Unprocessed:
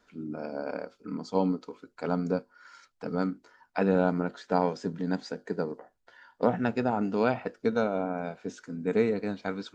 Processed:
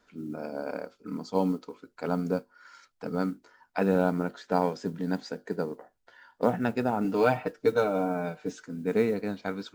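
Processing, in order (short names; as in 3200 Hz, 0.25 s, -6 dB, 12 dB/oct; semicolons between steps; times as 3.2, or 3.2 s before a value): 7.04–8.64 comb 6.6 ms, depth 77%; modulation noise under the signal 33 dB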